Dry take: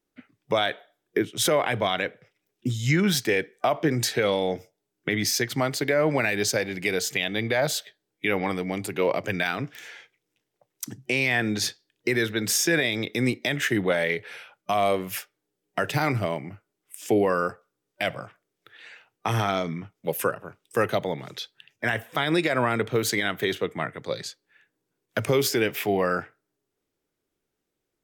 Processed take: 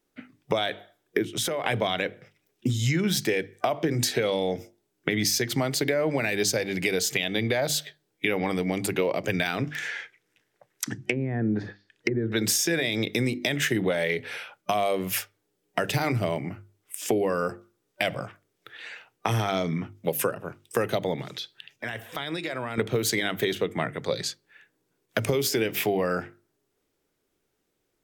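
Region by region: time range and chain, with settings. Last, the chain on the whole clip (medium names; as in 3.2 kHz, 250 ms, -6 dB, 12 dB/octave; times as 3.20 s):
1.24–1.65 s: compression 10:1, threshold -29 dBFS + tape noise reduction on one side only encoder only
9.71–12.32 s: low-pass that closes with the level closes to 320 Hz, closed at -21 dBFS + peaking EQ 1.7 kHz +9.5 dB 0.82 oct
21.22–22.78 s: peaking EQ 3.7 kHz +4 dB 0.84 oct + compression 2:1, threshold -44 dBFS
whole clip: hum notches 50/100/150/200/250/300/350 Hz; dynamic bell 1.3 kHz, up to -5 dB, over -38 dBFS, Q 0.88; compression, threshold -27 dBFS; trim +5.5 dB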